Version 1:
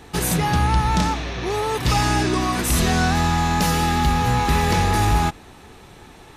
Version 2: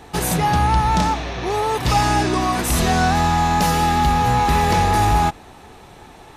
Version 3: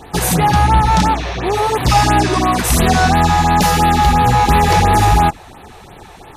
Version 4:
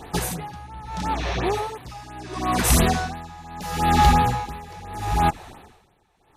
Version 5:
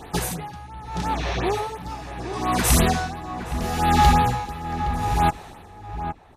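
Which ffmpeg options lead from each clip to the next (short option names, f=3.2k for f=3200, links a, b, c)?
-af "equalizer=f=750:t=o:w=1:g=5.5"
-af "afftfilt=real='re*(1-between(b*sr/1024,210*pow(6800/210,0.5+0.5*sin(2*PI*2.9*pts/sr))/1.41,210*pow(6800/210,0.5+0.5*sin(2*PI*2.9*pts/sr))*1.41))':imag='im*(1-between(b*sr/1024,210*pow(6800/210,0.5+0.5*sin(2*PI*2.9*pts/sr))/1.41,210*pow(6800/210,0.5+0.5*sin(2*PI*2.9*pts/sr))*1.41))':win_size=1024:overlap=0.75,volume=5.5dB"
-af "aeval=exprs='val(0)*pow(10,-25*(0.5-0.5*cos(2*PI*0.74*n/s))/20)':c=same,volume=-3dB"
-filter_complex "[0:a]asplit=2[a][b];[b]adelay=816.3,volume=-9dB,highshelf=f=4k:g=-18.4[c];[a][c]amix=inputs=2:normalize=0"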